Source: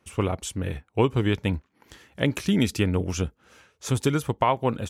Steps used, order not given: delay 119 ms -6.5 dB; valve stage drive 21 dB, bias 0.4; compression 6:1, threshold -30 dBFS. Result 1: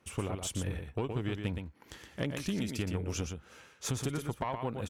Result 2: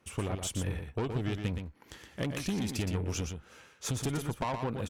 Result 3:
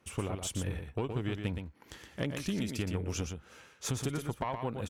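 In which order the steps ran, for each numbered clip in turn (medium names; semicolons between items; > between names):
compression > delay > valve stage; valve stage > compression > delay; compression > valve stage > delay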